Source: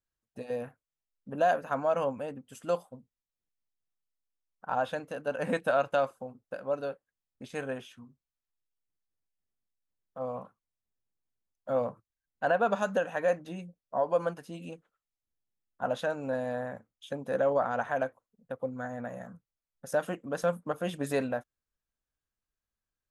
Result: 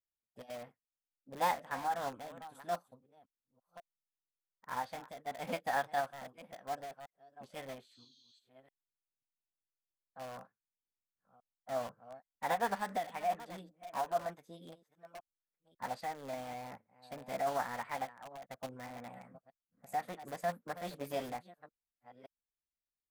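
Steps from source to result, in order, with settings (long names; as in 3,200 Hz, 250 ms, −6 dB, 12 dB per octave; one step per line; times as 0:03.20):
delay that plays each chunk backwards 543 ms, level −13 dB
healed spectral selection 0:07.89–0:08.36, 2,400–6,600 Hz before
in parallel at −7 dB: wrap-around overflow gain 32 dB
on the sum: formants moved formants +4 semitones
expander for the loud parts 1.5 to 1, over −47 dBFS
level −5.5 dB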